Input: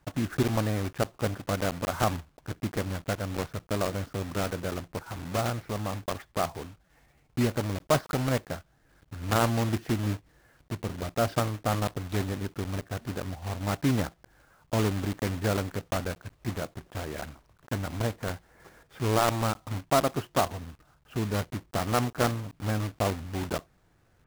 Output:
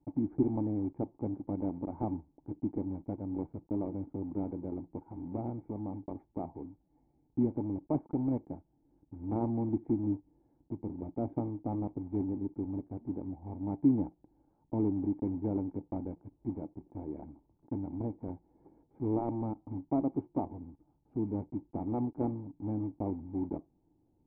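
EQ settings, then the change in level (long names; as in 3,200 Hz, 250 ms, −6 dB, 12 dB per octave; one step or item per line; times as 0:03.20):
formant resonators in series u
+5.0 dB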